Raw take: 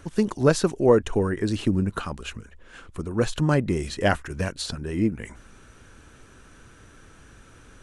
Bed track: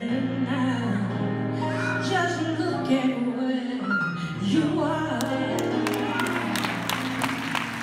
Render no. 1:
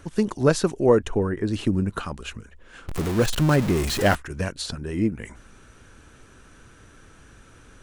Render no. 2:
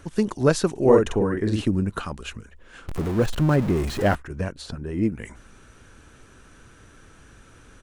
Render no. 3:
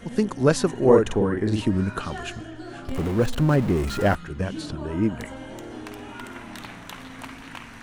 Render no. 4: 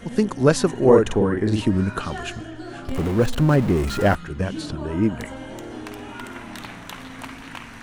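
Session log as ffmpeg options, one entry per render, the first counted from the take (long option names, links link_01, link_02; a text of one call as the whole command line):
ffmpeg -i in.wav -filter_complex "[0:a]asettb=1/sr,asplit=3[link_01][link_02][link_03];[link_01]atrim=end=1.094[link_04];[link_02]atrim=start=1.09:end=1.53,asetpts=PTS-STARTPTS,afade=type=in:duration=0.004:curve=qsin,afade=type=out:start_time=0.436:duration=0.004:curve=qsin,highshelf=frequency=3100:gain=-10.5[link_05];[link_03]atrim=start=1.526[link_06];[link_04][link_05]acrossfade=duration=0.004:curve1=hsin:curve2=qsin[link_07];[link_07][link_06]acrossfade=duration=0.004:curve1=qsin:curve2=hsin,asettb=1/sr,asplit=3[link_08][link_09][link_10];[link_08]atrim=end=2.884[link_11];[link_09]atrim=start=2.88:end=4.15,asetpts=PTS-STARTPTS,afade=type=in:duration=0.004:curve=qsin,afade=type=out:start_time=1.266:duration=0.004:curve=qsin,aeval=exprs='val(0)+0.5*0.0668*sgn(val(0))':channel_layout=same[link_12];[link_10]atrim=start=4.146[link_13];[link_11][link_12]acrossfade=duration=0.004:curve1=hsin:curve2=qsin[link_14];[link_14][link_13]acrossfade=duration=0.004:curve1=qsin:curve2=hsin" out.wav
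ffmpeg -i in.wav -filter_complex "[0:a]asplit=3[link_01][link_02][link_03];[link_01]afade=type=out:start_time=0.75:duration=0.02[link_04];[link_02]asplit=2[link_05][link_06];[link_06]adelay=46,volume=-2.5dB[link_07];[link_05][link_07]amix=inputs=2:normalize=0,afade=type=in:start_time=0.75:duration=0.02,afade=type=out:start_time=1.61:duration=0.02[link_08];[link_03]afade=type=in:start_time=1.61:duration=0.02[link_09];[link_04][link_08][link_09]amix=inputs=3:normalize=0,asettb=1/sr,asplit=3[link_10][link_11][link_12];[link_10]atrim=end=2.954[link_13];[link_11]atrim=start=2.95:end=5.03,asetpts=PTS-STARTPTS,afade=type=in:duration=0.004:curve=qsin,afade=type=out:start_time=2.076:duration=0.004:curve=qsin,highshelf=frequency=2100:gain=-10[link_14];[link_12]atrim=start=5.026[link_15];[link_13][link_14]acrossfade=duration=0.004:curve1=hsin:curve2=qsin[link_16];[link_16][link_15]acrossfade=duration=0.004:curve1=qsin:curve2=hsin" out.wav
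ffmpeg -i in.wav -i bed.wav -filter_complex "[1:a]volume=-12.5dB[link_01];[0:a][link_01]amix=inputs=2:normalize=0" out.wav
ffmpeg -i in.wav -af "volume=2.5dB,alimiter=limit=-3dB:level=0:latency=1" out.wav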